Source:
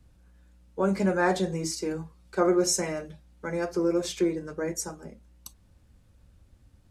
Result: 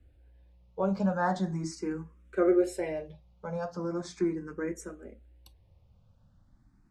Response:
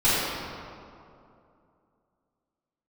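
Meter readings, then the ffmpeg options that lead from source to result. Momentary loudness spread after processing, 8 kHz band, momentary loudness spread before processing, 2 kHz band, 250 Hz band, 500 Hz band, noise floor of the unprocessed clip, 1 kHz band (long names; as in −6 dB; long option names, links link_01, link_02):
19 LU, −16.0 dB, 14 LU, −6.5 dB, −2.5 dB, −3.5 dB, −60 dBFS, −2.5 dB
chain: -filter_complex "[0:a]aemphasis=mode=reproduction:type=75kf,asplit=2[link_01][link_02];[link_02]afreqshift=0.39[link_03];[link_01][link_03]amix=inputs=2:normalize=1"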